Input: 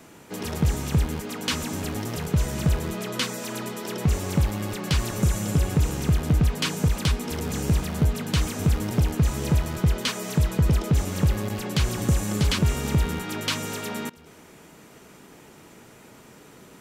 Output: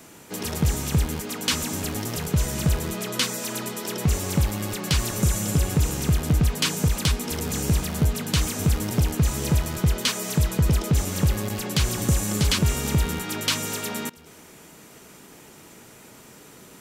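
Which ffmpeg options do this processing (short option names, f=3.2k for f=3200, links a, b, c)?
-af "highshelf=f=4.1k:g=7.5"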